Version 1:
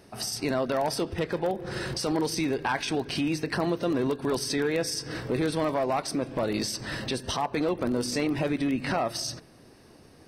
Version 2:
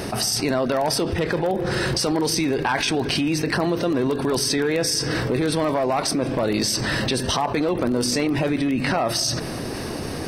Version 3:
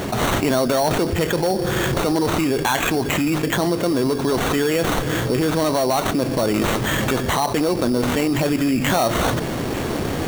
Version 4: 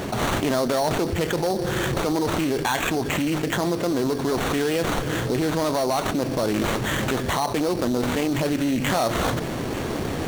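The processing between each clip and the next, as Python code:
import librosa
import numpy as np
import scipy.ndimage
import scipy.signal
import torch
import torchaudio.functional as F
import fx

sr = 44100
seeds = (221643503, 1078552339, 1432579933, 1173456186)

y1 = fx.env_flatten(x, sr, amount_pct=70)
y1 = F.gain(torch.from_numpy(y1), 4.0).numpy()
y2 = fx.sample_hold(y1, sr, seeds[0], rate_hz=5000.0, jitter_pct=0)
y2 = fx.rider(y2, sr, range_db=4, speed_s=2.0)
y2 = F.gain(torch.from_numpy(y2), 2.5).numpy()
y3 = fx.doppler_dist(y2, sr, depth_ms=0.26)
y3 = F.gain(torch.from_numpy(y3), -3.5).numpy()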